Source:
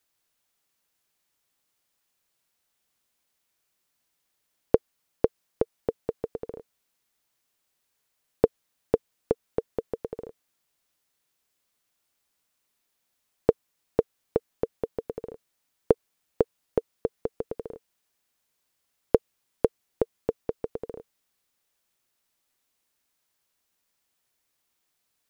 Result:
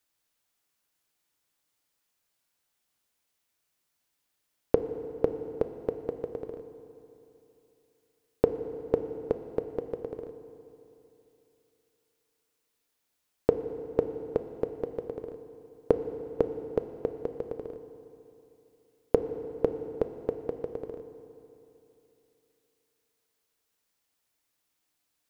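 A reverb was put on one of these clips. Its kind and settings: FDN reverb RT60 3.1 s, high-frequency decay 0.8×, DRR 8 dB; trim -2.5 dB

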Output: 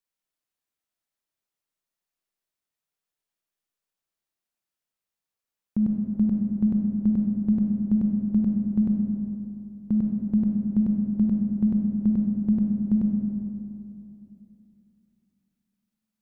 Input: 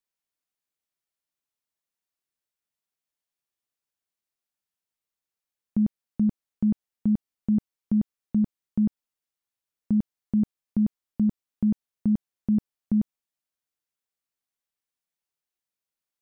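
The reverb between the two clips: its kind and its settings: algorithmic reverb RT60 2.9 s, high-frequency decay 0.35×, pre-delay 5 ms, DRR 1 dB; trim -1 dB

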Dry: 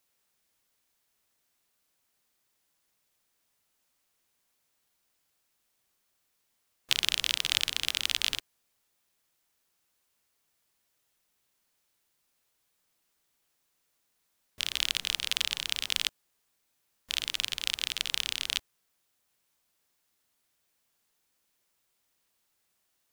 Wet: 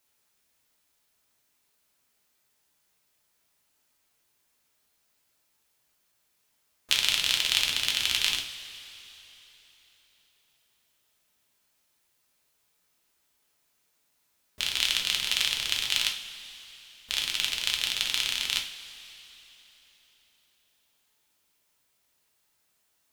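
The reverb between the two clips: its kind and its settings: two-slope reverb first 0.39 s, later 3.8 s, from -18 dB, DRR 0.5 dB; trim +1 dB

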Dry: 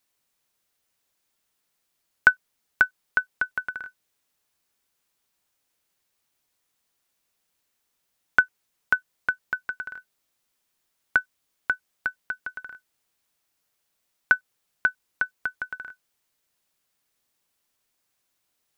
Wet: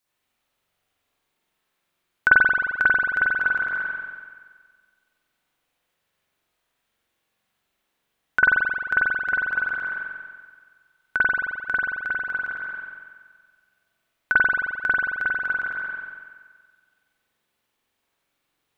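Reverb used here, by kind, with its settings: spring tank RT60 1.6 s, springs 44 ms, chirp 30 ms, DRR -9.5 dB; trim -4.5 dB

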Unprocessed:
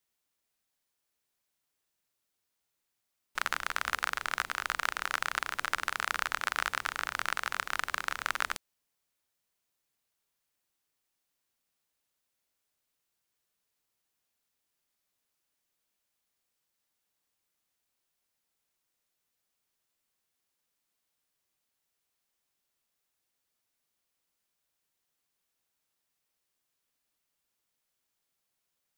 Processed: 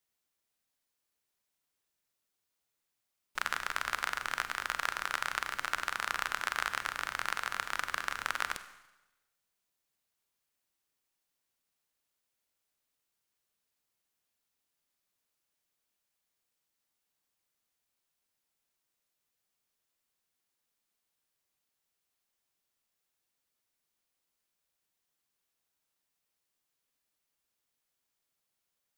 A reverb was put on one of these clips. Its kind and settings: Schroeder reverb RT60 1 s, combs from 32 ms, DRR 11 dB; trim -2 dB

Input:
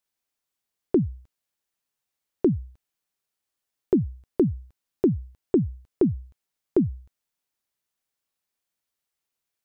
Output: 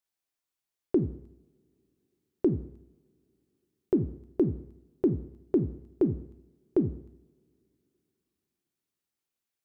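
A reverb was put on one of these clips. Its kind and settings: two-slope reverb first 0.68 s, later 3.2 s, from -28 dB, DRR 8.5 dB; trim -5 dB

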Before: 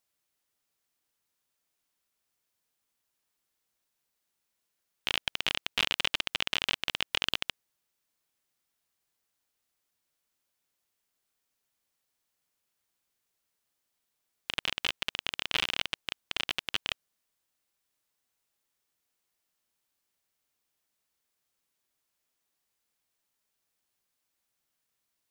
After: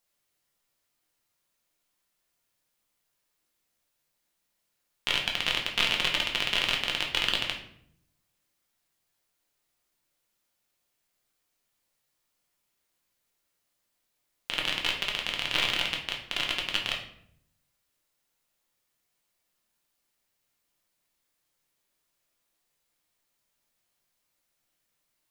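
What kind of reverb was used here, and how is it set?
simulated room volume 120 m³, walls mixed, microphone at 0.86 m; trim +1 dB

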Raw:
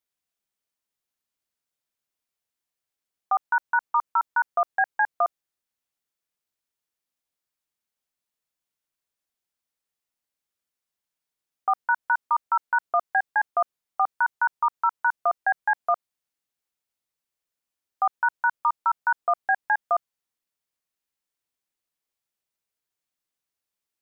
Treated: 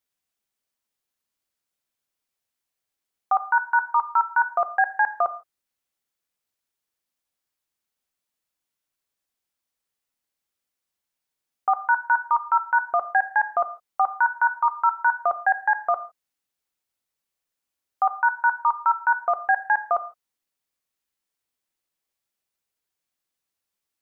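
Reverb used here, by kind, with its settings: gated-style reverb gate 180 ms falling, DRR 10.5 dB; trim +2 dB

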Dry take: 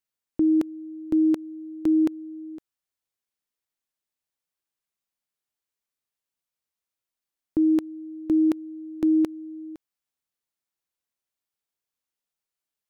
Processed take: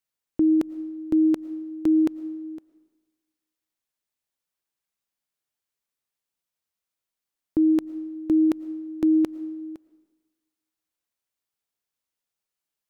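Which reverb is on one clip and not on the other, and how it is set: algorithmic reverb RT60 1.2 s, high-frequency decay 0.85×, pre-delay 70 ms, DRR 18 dB; trim +1 dB

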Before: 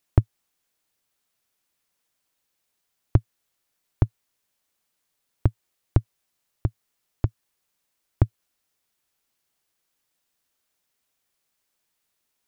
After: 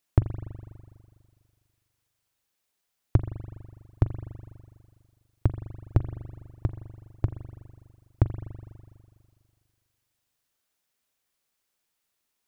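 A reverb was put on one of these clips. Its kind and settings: spring tank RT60 2 s, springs 41 ms, chirp 25 ms, DRR 9 dB; trim -2.5 dB

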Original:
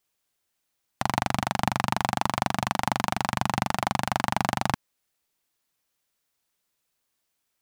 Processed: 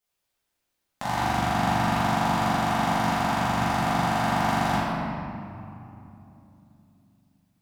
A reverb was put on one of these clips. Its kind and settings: simulated room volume 120 m³, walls hard, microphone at 1.4 m; trim -9.5 dB

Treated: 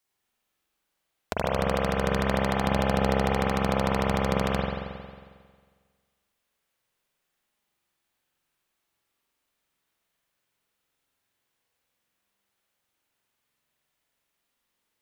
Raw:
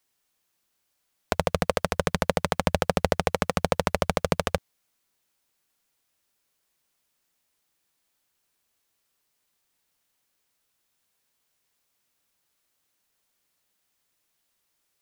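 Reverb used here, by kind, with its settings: spring tank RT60 1.7 s, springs 45 ms, chirp 35 ms, DRR -5 dB; trim -6 dB

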